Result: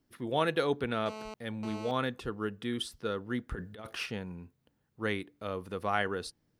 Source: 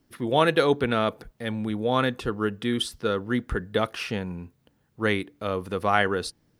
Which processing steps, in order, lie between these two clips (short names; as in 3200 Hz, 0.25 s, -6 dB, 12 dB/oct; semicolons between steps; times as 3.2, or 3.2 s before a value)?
1.06–1.91 GSM buzz -34 dBFS; 3.54–4.06 negative-ratio compressor -29 dBFS, ratio -0.5; gain -8.5 dB